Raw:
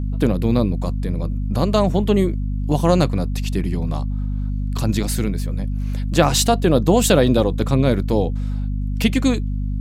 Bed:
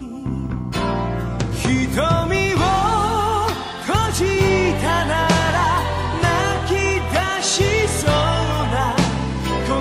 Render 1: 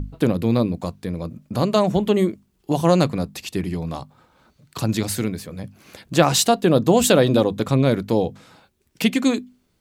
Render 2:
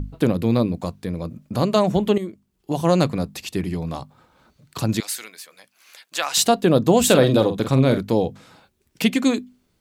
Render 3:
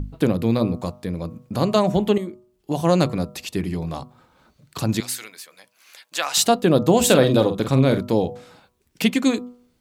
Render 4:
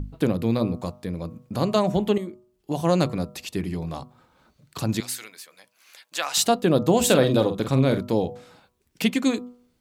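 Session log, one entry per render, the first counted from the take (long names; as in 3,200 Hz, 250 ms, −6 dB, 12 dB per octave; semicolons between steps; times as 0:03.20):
mains-hum notches 50/100/150/200/250 Hz
0:02.18–0:03.10: fade in, from −12 dB; 0:05.00–0:06.37: Bessel high-pass filter 1,500 Hz; 0:07.03–0:07.98: double-tracking delay 46 ms −9 dB
hum removal 122.4 Hz, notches 11
level −3 dB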